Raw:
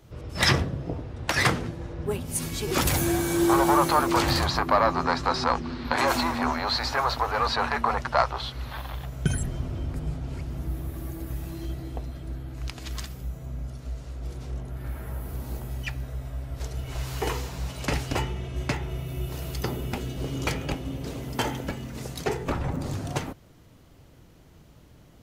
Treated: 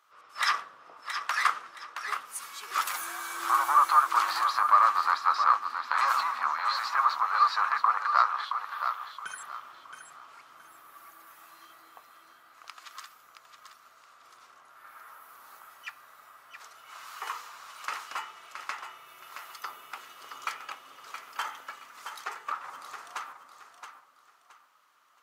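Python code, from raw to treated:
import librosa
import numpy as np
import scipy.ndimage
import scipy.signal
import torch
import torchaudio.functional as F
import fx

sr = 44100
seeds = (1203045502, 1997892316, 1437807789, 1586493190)

p1 = fx.octave_divider(x, sr, octaves=2, level_db=-2.0)
p2 = fx.highpass_res(p1, sr, hz=1200.0, q=5.5)
p3 = p2 + fx.echo_feedback(p2, sr, ms=671, feedback_pct=29, wet_db=-8.0, dry=0)
y = p3 * 10.0 ** (-9.0 / 20.0)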